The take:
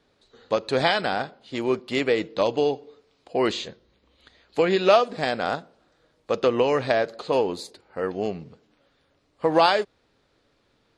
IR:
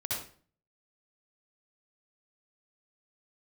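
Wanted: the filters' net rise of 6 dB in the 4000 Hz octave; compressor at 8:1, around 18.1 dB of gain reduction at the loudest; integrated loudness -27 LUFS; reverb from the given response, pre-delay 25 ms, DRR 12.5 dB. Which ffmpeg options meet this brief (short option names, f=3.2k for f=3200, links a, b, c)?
-filter_complex "[0:a]equalizer=f=4k:t=o:g=7.5,acompressor=threshold=-31dB:ratio=8,asplit=2[a][b];[1:a]atrim=start_sample=2205,adelay=25[c];[b][c]afir=irnorm=-1:irlink=0,volume=-17dB[d];[a][d]amix=inputs=2:normalize=0,volume=8.5dB"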